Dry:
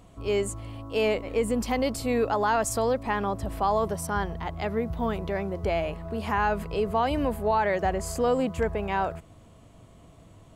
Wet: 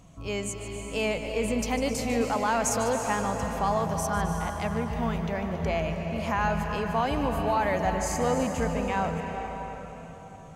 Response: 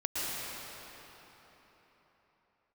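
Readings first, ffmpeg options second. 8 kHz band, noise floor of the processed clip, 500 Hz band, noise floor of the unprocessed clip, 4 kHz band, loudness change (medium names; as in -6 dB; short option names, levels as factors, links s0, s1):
+4.0 dB, -44 dBFS, -2.5 dB, -53 dBFS, +1.0 dB, -1.0 dB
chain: -filter_complex "[0:a]equalizer=f=160:t=o:w=0.33:g=10,equalizer=f=400:t=o:w=0.33:g=-7,equalizer=f=2500:t=o:w=0.33:g=3,equalizer=f=6300:t=o:w=0.33:g=11,asplit=2[s0][s1];[1:a]atrim=start_sample=2205,adelay=149[s2];[s1][s2]afir=irnorm=-1:irlink=0,volume=0.282[s3];[s0][s3]amix=inputs=2:normalize=0,volume=0.794"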